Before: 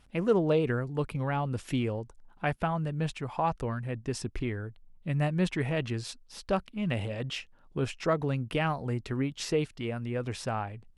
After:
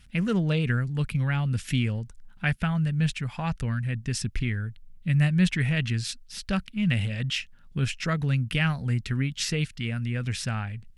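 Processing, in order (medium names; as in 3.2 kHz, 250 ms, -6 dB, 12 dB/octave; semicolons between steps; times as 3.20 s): high-order bell 580 Hz -14.5 dB 2.3 oct; trim +7.5 dB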